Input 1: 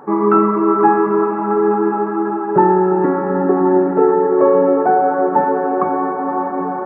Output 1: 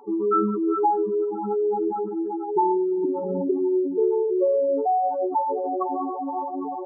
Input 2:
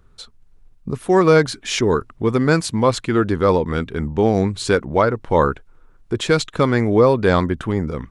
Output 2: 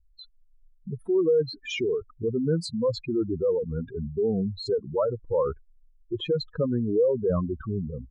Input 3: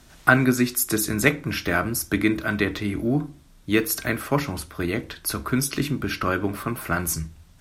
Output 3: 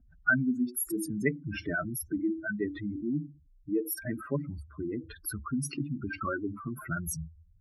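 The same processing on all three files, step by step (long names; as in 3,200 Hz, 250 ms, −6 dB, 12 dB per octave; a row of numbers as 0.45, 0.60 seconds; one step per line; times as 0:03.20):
expanding power law on the bin magnitudes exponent 3.7
level −8 dB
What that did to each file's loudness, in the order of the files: −9.0, −9.0, −9.0 LU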